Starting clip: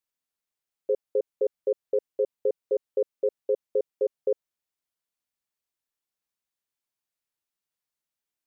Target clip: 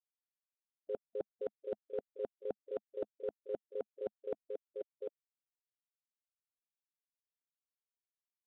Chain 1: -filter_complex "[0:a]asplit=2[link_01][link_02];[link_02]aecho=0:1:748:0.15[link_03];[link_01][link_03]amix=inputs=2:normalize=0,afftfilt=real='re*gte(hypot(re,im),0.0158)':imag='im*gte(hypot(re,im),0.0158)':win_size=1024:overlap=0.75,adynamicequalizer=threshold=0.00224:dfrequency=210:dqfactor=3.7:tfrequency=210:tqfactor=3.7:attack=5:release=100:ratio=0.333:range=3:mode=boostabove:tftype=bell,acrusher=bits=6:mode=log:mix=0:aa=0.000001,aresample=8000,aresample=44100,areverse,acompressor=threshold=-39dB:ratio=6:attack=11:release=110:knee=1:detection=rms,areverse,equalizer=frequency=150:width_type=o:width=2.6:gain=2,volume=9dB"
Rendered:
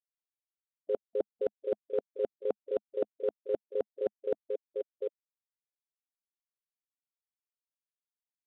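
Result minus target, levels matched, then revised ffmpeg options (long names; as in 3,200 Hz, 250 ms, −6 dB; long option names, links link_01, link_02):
downward compressor: peak gain reduction −8.5 dB
-filter_complex "[0:a]asplit=2[link_01][link_02];[link_02]aecho=0:1:748:0.15[link_03];[link_01][link_03]amix=inputs=2:normalize=0,afftfilt=real='re*gte(hypot(re,im),0.0158)':imag='im*gte(hypot(re,im),0.0158)':win_size=1024:overlap=0.75,adynamicequalizer=threshold=0.00224:dfrequency=210:dqfactor=3.7:tfrequency=210:tqfactor=3.7:attack=5:release=100:ratio=0.333:range=3:mode=boostabove:tftype=bell,acrusher=bits=6:mode=log:mix=0:aa=0.000001,aresample=8000,aresample=44100,areverse,acompressor=threshold=-49dB:ratio=6:attack=11:release=110:knee=1:detection=rms,areverse,equalizer=frequency=150:width_type=o:width=2.6:gain=2,volume=9dB"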